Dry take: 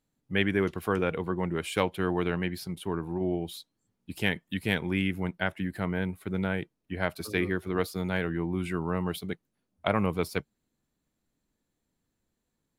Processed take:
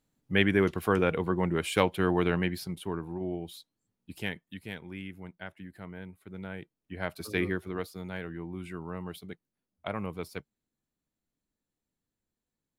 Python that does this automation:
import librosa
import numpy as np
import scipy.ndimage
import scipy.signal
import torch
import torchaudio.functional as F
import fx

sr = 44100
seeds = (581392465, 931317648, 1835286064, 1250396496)

y = fx.gain(x, sr, db=fx.line((2.39, 2.0), (3.22, -5.0), (4.12, -5.0), (4.74, -13.0), (6.24, -13.0), (7.46, -0.5), (7.89, -8.5)))